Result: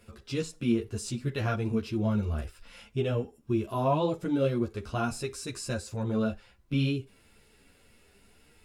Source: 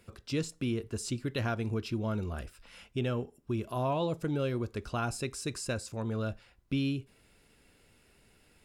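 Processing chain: harmonic-percussive split harmonic +7 dB; three-phase chorus; trim +1.5 dB

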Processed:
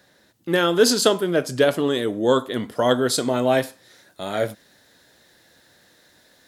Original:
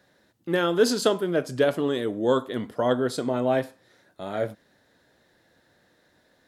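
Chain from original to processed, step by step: treble shelf 2.7 kHz +6.5 dB, from 2.75 s +12 dB; trim +3.5 dB

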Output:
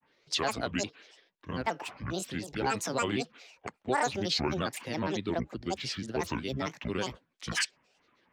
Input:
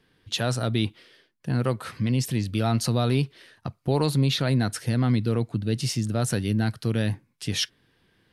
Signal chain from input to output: three-band isolator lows -18 dB, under 290 Hz, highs -22 dB, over 6.3 kHz; granulator, grains 22 per s, spray 10 ms, pitch spread up and down by 12 st

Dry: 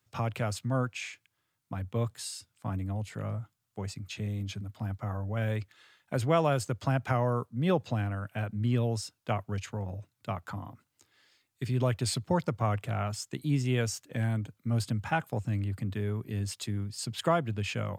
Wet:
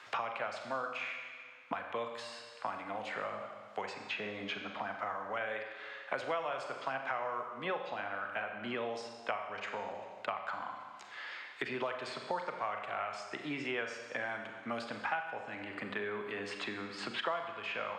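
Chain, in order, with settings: band-pass 770–2600 Hz; Schroeder reverb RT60 0.91 s, combs from 30 ms, DRR 4.5 dB; three bands compressed up and down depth 100%; trim +1 dB

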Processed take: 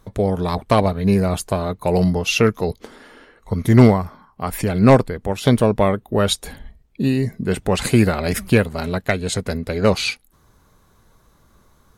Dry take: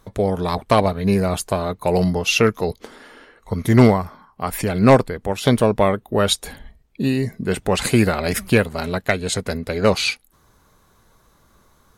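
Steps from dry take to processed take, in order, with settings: bass shelf 320 Hz +4.5 dB; trim -1.5 dB

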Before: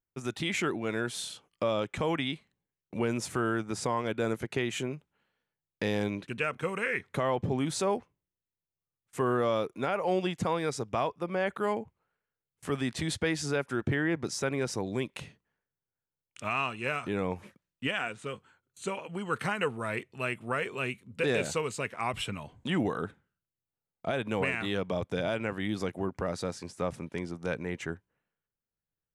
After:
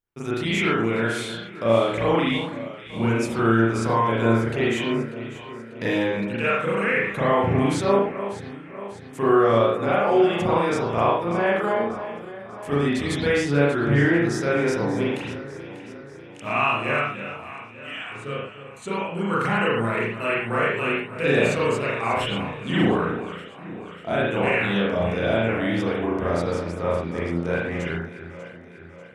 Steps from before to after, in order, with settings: 17.01–18.12 s: amplifier tone stack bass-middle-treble 5-5-5; echo whose repeats swap between lows and highs 296 ms, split 1.8 kHz, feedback 73%, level -11 dB; reverberation, pre-delay 35 ms, DRR -8.5 dB

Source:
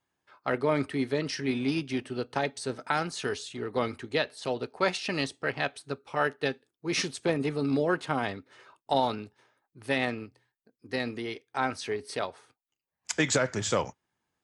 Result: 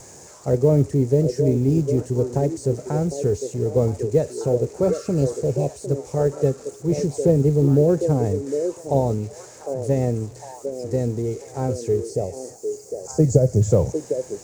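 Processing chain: zero-crossing glitches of -19.5 dBFS; RIAA curve playback; spectral replace 4.88–5.73 s, 1.1–2.2 kHz both; FFT filter 150 Hz 0 dB, 260 Hz -8 dB, 480 Hz +2 dB, 1.3 kHz -21 dB, 2.2 kHz -21 dB, 3.3 kHz -28 dB, 7 kHz -2 dB, 12 kHz -23 dB; companded quantiser 8-bit; time-frequency box 12.10–13.61 s, 860–4200 Hz -11 dB; repeats whose band climbs or falls 754 ms, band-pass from 430 Hz, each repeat 1.4 oct, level -5 dB; trim +7.5 dB

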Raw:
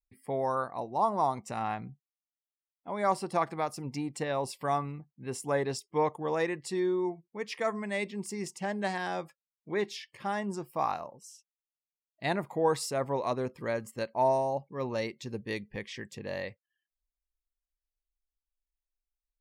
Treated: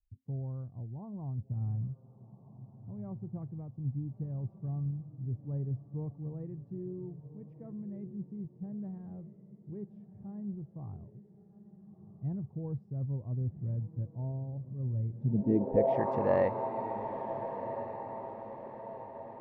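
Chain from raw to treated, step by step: echo that smears into a reverb 1372 ms, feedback 46%, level -13 dB; low-pass sweep 100 Hz -> 960 Hz, 15.08–16.06 s; trim +7.5 dB

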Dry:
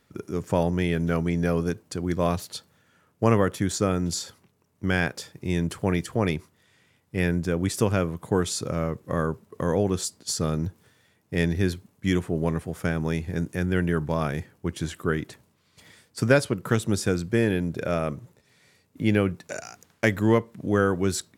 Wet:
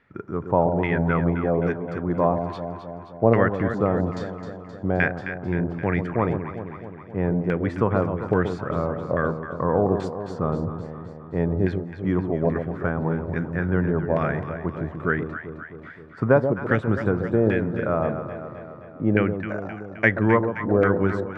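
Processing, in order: LFO low-pass saw down 1.2 Hz 620–2100 Hz; echo whose repeats swap between lows and highs 131 ms, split 870 Hz, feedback 77%, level -7 dB

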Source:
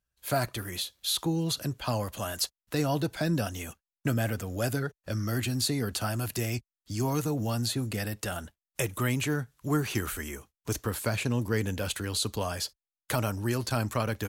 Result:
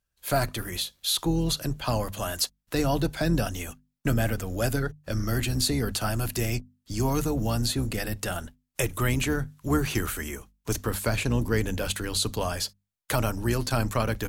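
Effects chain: octave divider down 2 oct, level -5 dB; hum notches 50/100/150/200/250 Hz; trim +3 dB

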